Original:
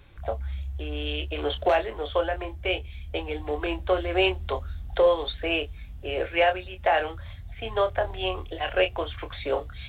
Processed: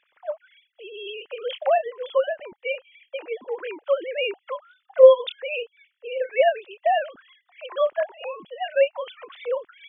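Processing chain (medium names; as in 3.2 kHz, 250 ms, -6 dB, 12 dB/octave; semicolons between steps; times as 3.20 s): formants replaced by sine waves; trim +3 dB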